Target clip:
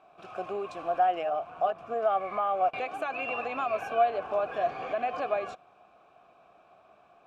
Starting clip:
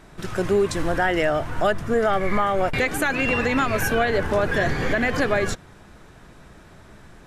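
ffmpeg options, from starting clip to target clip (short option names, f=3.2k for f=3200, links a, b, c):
-filter_complex "[0:a]asplit=3[a][b][c];[a]afade=t=out:st=1.19:d=0.02[d];[b]tremolo=f=170:d=0.621,afade=t=in:st=1.19:d=0.02,afade=t=out:st=1.78:d=0.02[e];[c]afade=t=in:st=1.78:d=0.02[f];[d][e][f]amix=inputs=3:normalize=0,asplit=3[g][h][i];[g]bandpass=f=730:t=q:w=8,volume=0dB[j];[h]bandpass=f=1.09k:t=q:w=8,volume=-6dB[k];[i]bandpass=f=2.44k:t=q:w=8,volume=-9dB[l];[j][k][l]amix=inputs=3:normalize=0,volume=2.5dB"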